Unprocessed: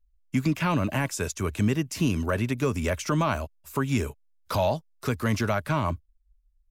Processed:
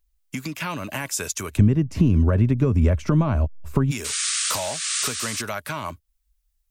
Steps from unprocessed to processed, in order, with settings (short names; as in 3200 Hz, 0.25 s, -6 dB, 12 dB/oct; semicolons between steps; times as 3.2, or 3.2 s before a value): 4.04–5.42 painted sound noise 1100–9600 Hz -35 dBFS; compressor 3:1, threshold -34 dBFS, peak gain reduction 11.5 dB; tilt +2 dB/oct, from 1.56 s -4 dB/oct, from 3.9 s +2.5 dB/oct; gain +7 dB